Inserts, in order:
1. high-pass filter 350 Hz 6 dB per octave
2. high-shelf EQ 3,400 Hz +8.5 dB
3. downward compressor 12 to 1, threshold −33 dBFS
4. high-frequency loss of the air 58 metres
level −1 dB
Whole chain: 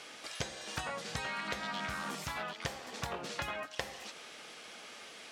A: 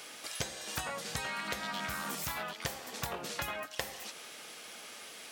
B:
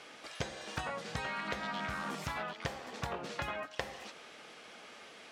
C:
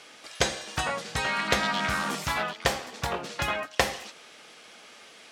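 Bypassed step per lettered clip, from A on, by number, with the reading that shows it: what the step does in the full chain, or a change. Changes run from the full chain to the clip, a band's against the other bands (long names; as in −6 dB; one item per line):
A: 4, 8 kHz band +5.0 dB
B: 2, 8 kHz band −6.5 dB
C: 3, average gain reduction 6.0 dB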